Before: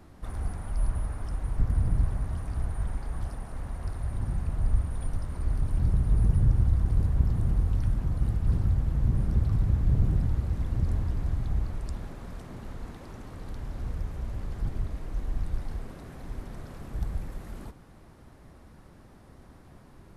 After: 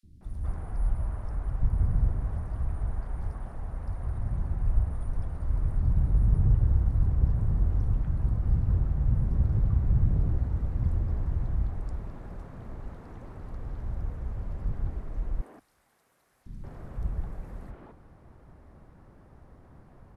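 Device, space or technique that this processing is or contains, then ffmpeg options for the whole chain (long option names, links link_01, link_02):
through cloth: -filter_complex "[0:a]asettb=1/sr,asplit=3[link_01][link_02][link_03];[link_01]atrim=end=15.384[link_04];[link_02]atrim=start=15.38:end=16.43,asetpts=PTS-STARTPTS,afade=type=in:duration=0.004:curve=qsin,afade=type=out:start_time=1.046:duration=0.004:curve=qsin,aderivative[link_05];[link_03]atrim=start=16.426[link_06];[link_04][link_05]acrossfade=duration=0.004:curve1=hsin:curve2=qsin[link_07];[link_07][link_06]acrossfade=duration=0.004:curve1=qsin:curve2=hsin,highshelf=frequency=2600:gain=-13,acrossover=split=260|3600[link_08][link_09][link_10];[link_08]adelay=30[link_11];[link_09]adelay=210[link_12];[link_11][link_12][link_10]amix=inputs=3:normalize=0"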